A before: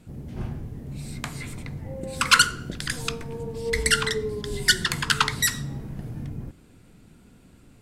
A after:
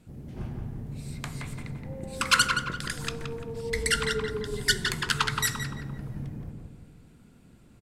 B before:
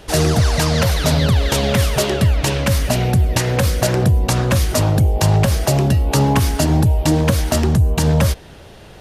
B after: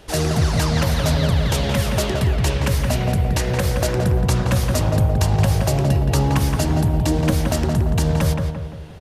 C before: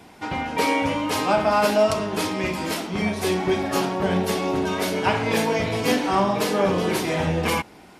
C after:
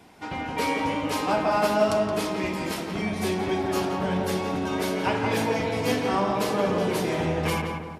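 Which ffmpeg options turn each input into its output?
-filter_complex "[0:a]asplit=2[link_01][link_02];[link_02]adelay=172,lowpass=frequency=1900:poles=1,volume=-3dB,asplit=2[link_03][link_04];[link_04]adelay=172,lowpass=frequency=1900:poles=1,volume=0.5,asplit=2[link_05][link_06];[link_06]adelay=172,lowpass=frequency=1900:poles=1,volume=0.5,asplit=2[link_07][link_08];[link_08]adelay=172,lowpass=frequency=1900:poles=1,volume=0.5,asplit=2[link_09][link_10];[link_10]adelay=172,lowpass=frequency=1900:poles=1,volume=0.5,asplit=2[link_11][link_12];[link_12]adelay=172,lowpass=frequency=1900:poles=1,volume=0.5,asplit=2[link_13][link_14];[link_14]adelay=172,lowpass=frequency=1900:poles=1,volume=0.5[link_15];[link_01][link_03][link_05][link_07][link_09][link_11][link_13][link_15]amix=inputs=8:normalize=0,volume=-5dB"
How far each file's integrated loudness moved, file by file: −4.5, −3.0, −3.0 LU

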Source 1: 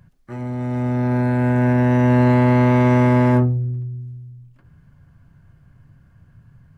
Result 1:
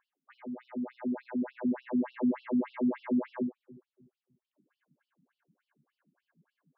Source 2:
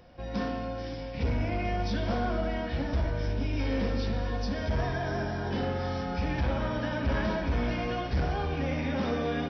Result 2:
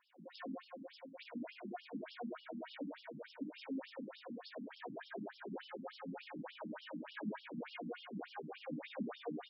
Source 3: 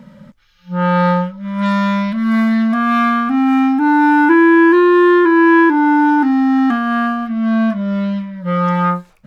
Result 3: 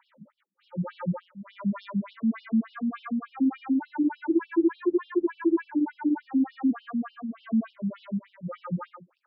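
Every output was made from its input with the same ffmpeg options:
-filter_complex "[0:a]acrossover=split=440[link_01][link_02];[link_02]acompressor=threshold=-32dB:ratio=2.5[link_03];[link_01][link_03]amix=inputs=2:normalize=0,aeval=exprs='0.794*(cos(1*acos(clip(val(0)/0.794,-1,1)))-cos(1*PI/2))+0.0398*(cos(4*acos(clip(val(0)/0.794,-1,1)))-cos(4*PI/2))+0.0316*(cos(6*acos(clip(val(0)/0.794,-1,1)))-cos(6*PI/2))+0.00794*(cos(7*acos(clip(val(0)/0.794,-1,1)))-cos(7*PI/2))':channel_layout=same,acrossover=split=110|1600[link_04][link_05][link_06];[link_06]asoftclip=type=tanh:threshold=-23.5dB[link_07];[link_04][link_05][link_07]amix=inputs=3:normalize=0,afftfilt=real='re*between(b*sr/1024,210*pow(4000/210,0.5+0.5*sin(2*PI*3.4*pts/sr))/1.41,210*pow(4000/210,0.5+0.5*sin(2*PI*3.4*pts/sr))*1.41)':imag='im*between(b*sr/1024,210*pow(4000/210,0.5+0.5*sin(2*PI*3.4*pts/sr))/1.41,210*pow(4000/210,0.5+0.5*sin(2*PI*3.4*pts/sr))*1.41)':win_size=1024:overlap=0.75,volume=-6dB"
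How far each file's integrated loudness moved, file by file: −16.0, −16.5, −15.5 LU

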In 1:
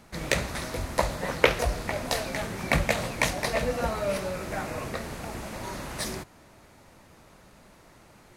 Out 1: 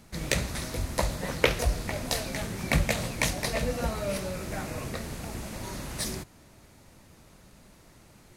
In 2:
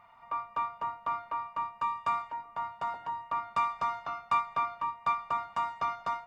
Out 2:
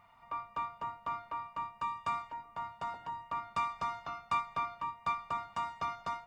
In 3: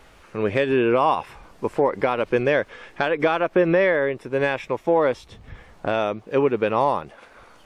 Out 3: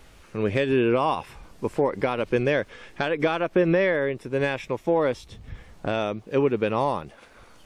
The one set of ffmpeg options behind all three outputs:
-af "equalizer=frequency=990:width=0.37:gain=-7.5,volume=2.5dB"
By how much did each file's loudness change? −1.5, −4.5, −3.0 LU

